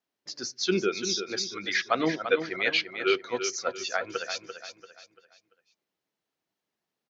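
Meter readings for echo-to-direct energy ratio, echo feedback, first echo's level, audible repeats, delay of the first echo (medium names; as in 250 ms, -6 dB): -8.5 dB, 37%, -9.0 dB, 4, 341 ms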